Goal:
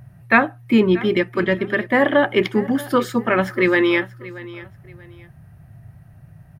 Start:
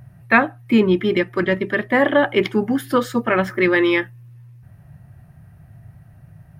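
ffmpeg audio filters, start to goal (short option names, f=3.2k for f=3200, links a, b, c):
-af "aecho=1:1:632|1264:0.119|0.0333"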